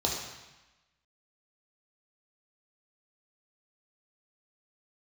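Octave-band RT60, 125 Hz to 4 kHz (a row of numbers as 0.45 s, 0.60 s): 1.1 s, 1.1 s, 0.95 s, 1.1 s, 1.2 s, 1.1 s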